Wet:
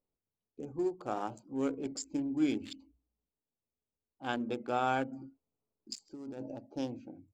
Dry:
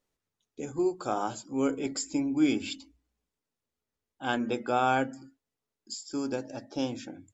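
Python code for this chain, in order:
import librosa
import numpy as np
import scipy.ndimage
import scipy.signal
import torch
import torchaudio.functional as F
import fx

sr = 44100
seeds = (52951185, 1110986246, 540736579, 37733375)

y = fx.wiener(x, sr, points=25)
y = fx.over_compress(y, sr, threshold_db=-39.0, ratio=-1.0, at=(5.11, 6.53), fade=0.02)
y = y * 10.0 ** (-5.0 / 20.0)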